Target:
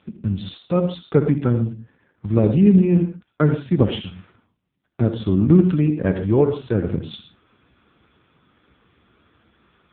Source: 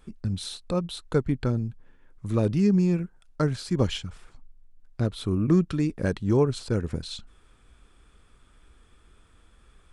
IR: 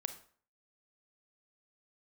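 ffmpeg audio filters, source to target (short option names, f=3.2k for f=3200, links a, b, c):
-filter_complex "[0:a]asplit=3[a][b][c];[a]afade=t=out:st=6.12:d=0.02[d];[b]equalizer=f=190:t=o:w=1.8:g=-4.5,afade=t=in:st=6.12:d=0.02,afade=t=out:st=6.74:d=0.02[e];[c]afade=t=in:st=6.74:d=0.02[f];[d][e][f]amix=inputs=3:normalize=0[g];[1:a]atrim=start_sample=2205,afade=t=out:st=0.15:d=0.01,atrim=end_sample=7056,asetrate=27783,aresample=44100[h];[g][h]afir=irnorm=-1:irlink=0,volume=6.5dB" -ar 8000 -c:a libopencore_amrnb -b:a 5900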